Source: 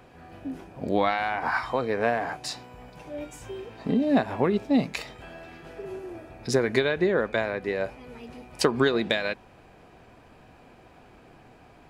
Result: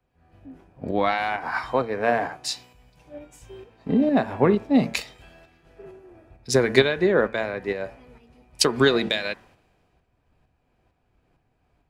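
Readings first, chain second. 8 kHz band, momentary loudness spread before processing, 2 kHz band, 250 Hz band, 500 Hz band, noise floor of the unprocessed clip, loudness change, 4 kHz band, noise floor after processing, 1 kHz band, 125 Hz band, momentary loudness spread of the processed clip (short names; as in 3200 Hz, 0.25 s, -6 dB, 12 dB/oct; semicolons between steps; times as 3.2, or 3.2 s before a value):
+7.5 dB, 20 LU, +2.5 dB, +2.5 dB, +3.0 dB, -53 dBFS, +3.5 dB, +6.0 dB, -70 dBFS, +2.0 dB, +3.5 dB, 13 LU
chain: de-hum 113.8 Hz, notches 18; tremolo saw up 2.2 Hz, depth 45%; three-band expander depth 70%; gain +3.5 dB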